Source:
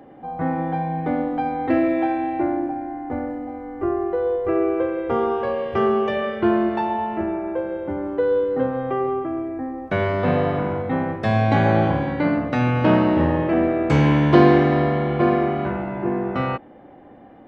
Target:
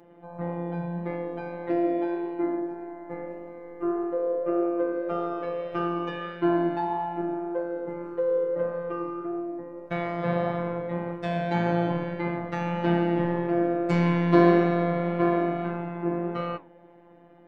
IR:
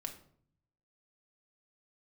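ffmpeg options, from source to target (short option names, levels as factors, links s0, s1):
-af "afftfilt=real='hypot(re,im)*cos(PI*b)':imag='0':win_size=1024:overlap=0.75,flanger=delay=6:depth=8:regen=83:speed=1.7:shape=triangular,volume=1.12"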